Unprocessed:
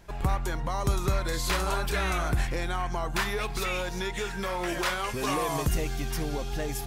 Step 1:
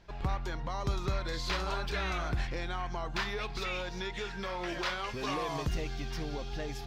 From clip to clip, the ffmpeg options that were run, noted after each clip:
-af "highshelf=f=6.8k:t=q:w=1.5:g=-13,volume=-6dB"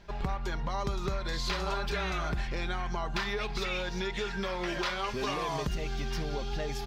-af "aecho=1:1:5:0.4,acompressor=threshold=-32dB:ratio=6,volume=4dB"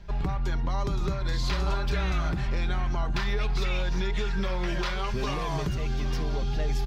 -filter_complex "[0:a]acrossover=split=160[a][b];[a]aeval=exprs='0.0562*sin(PI/2*2.51*val(0)/0.0562)':c=same[c];[c][b]amix=inputs=2:normalize=0,asplit=2[d][e];[e]adelay=758,volume=-12dB,highshelf=f=4k:g=-17.1[f];[d][f]amix=inputs=2:normalize=0"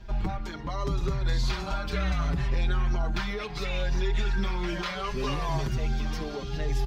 -filter_complex "[0:a]asplit=2[a][b];[b]alimiter=level_in=3.5dB:limit=-24dB:level=0:latency=1,volume=-3.5dB,volume=-3dB[c];[a][c]amix=inputs=2:normalize=0,asplit=2[d][e];[e]adelay=5.8,afreqshift=-0.69[f];[d][f]amix=inputs=2:normalize=1"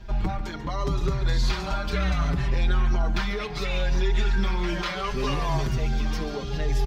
-af "aecho=1:1:142:0.2,volume=3dB"

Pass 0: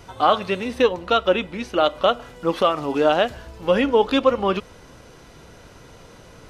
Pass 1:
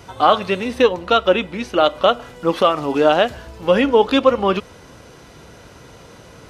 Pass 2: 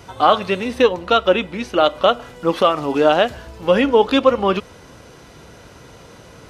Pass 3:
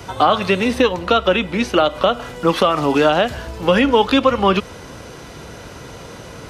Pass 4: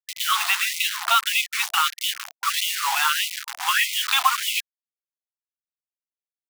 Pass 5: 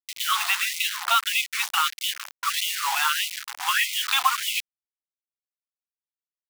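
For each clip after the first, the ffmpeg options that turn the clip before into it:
-af "highpass=51,volume=3.5dB"
-af anull
-filter_complex "[0:a]acrossover=split=190|950[a][b][c];[b]acompressor=threshold=-22dB:ratio=6[d];[c]alimiter=limit=-16.5dB:level=0:latency=1:release=106[e];[a][d][e]amix=inputs=3:normalize=0,volume=7dB"
-af "acrusher=bits=3:mix=0:aa=0.000001,afftfilt=real='re*gte(b*sr/1024,670*pow(2000/670,0.5+0.5*sin(2*PI*1.6*pts/sr)))':imag='im*gte(b*sr/1024,670*pow(2000/670,0.5+0.5*sin(2*PI*1.6*pts/sr)))':win_size=1024:overlap=0.75"
-af "acrusher=bits=7:mix=0:aa=0.5,volume=-2dB"

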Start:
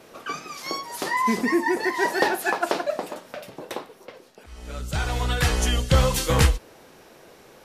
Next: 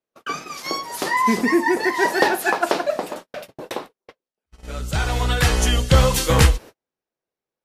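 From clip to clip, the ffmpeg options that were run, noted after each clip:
-af "agate=range=-44dB:threshold=-38dB:ratio=16:detection=peak,volume=4dB"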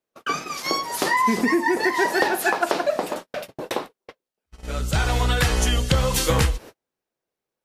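-af "acompressor=threshold=-19dB:ratio=6,volume=2.5dB"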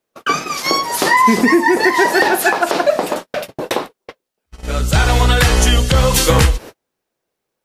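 -af "alimiter=level_in=9.5dB:limit=-1dB:release=50:level=0:latency=1,volume=-1dB"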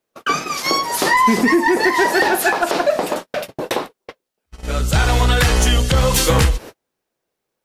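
-af "acontrast=24,volume=-6dB"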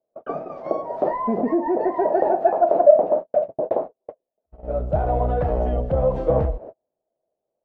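-af "lowpass=f=640:t=q:w=6.6,volume=-8.5dB"

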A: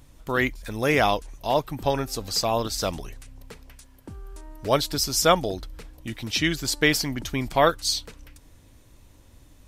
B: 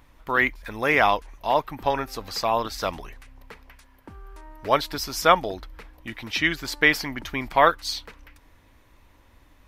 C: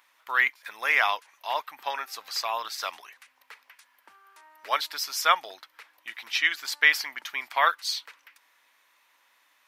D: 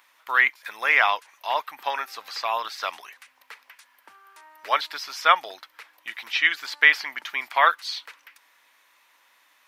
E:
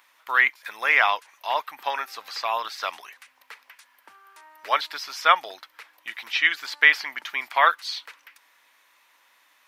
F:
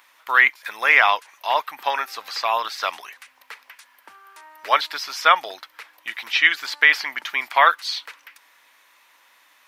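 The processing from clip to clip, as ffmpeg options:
-af "equalizer=f=125:t=o:w=1:g=-5,equalizer=f=1k:t=o:w=1:g=7,equalizer=f=2k:t=o:w=1:g=7,equalizer=f=8k:t=o:w=1:g=-8,volume=-3dB"
-af "highpass=1.2k"
-filter_complex "[0:a]acrossover=split=4100[a][b];[b]acompressor=threshold=-48dB:ratio=4:attack=1:release=60[c];[a][c]amix=inputs=2:normalize=0,volume=4dB"
-af anull
-af "alimiter=level_in=5.5dB:limit=-1dB:release=50:level=0:latency=1,volume=-1dB"

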